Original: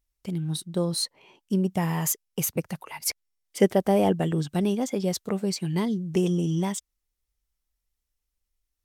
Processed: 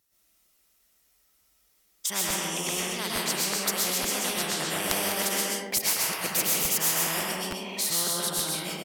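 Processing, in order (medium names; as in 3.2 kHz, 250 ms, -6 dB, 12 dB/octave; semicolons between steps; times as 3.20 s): reverse the whole clip; Bessel high-pass 180 Hz, order 2; treble shelf 9.2 kHz +6 dB; delay 131 ms -7 dB; reverberation RT60 0.70 s, pre-delay 85 ms, DRR -8.5 dB; crackling interface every 0.87 s, samples 512, repeat, from 0.54 s; spectrum-flattening compressor 4:1; trim -3 dB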